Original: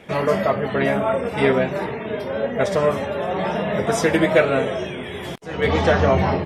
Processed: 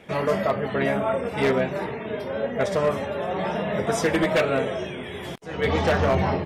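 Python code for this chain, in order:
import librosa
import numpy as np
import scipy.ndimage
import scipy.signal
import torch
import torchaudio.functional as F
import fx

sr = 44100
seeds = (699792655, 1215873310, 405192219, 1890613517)

y = 10.0 ** (-9.5 / 20.0) * (np.abs((x / 10.0 ** (-9.5 / 20.0) + 3.0) % 4.0 - 2.0) - 1.0)
y = y * librosa.db_to_amplitude(-3.5)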